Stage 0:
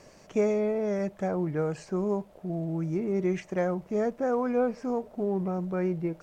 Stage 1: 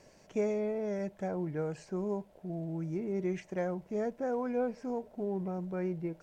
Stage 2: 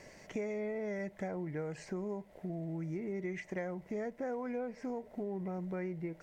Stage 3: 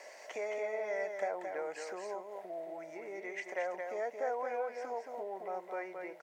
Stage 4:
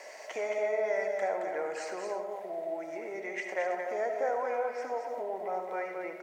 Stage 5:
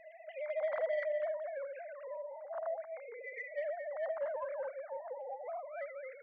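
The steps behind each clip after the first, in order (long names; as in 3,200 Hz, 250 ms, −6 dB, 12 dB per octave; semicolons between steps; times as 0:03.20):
notch filter 1,200 Hz, Q 6.7; level −6 dB
parametric band 2,000 Hz +12 dB 0.29 octaves; downward compressor 4 to 1, threshold −41 dBFS, peak gain reduction 12 dB; level +4 dB
four-pole ladder high-pass 510 Hz, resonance 35%; single-tap delay 221 ms −5.5 dB; level +10.5 dB
convolution reverb RT60 0.85 s, pre-delay 35 ms, DRR 5.5 dB; level +4 dB
three sine waves on the formant tracks; soft clipping −21.5 dBFS, distortion −21 dB; level −5 dB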